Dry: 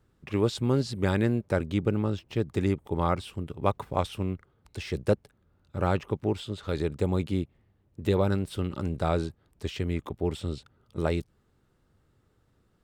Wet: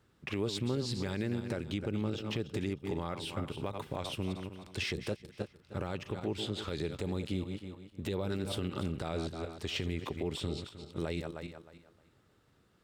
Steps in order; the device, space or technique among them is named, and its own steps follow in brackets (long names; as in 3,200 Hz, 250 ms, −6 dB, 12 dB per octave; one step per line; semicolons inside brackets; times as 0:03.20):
feedback delay that plays each chunk backwards 155 ms, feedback 47%, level −11 dB
dynamic equaliser 1,100 Hz, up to −5 dB, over −40 dBFS, Q 0.75
broadcast voice chain (high-pass filter 97 Hz 6 dB per octave; de-essing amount 80%; downward compressor 3 to 1, threshold −30 dBFS, peak gain reduction 8.5 dB; parametric band 3,200 Hz +5 dB 2.4 octaves; brickwall limiter −23.5 dBFS, peak gain reduction 8 dB)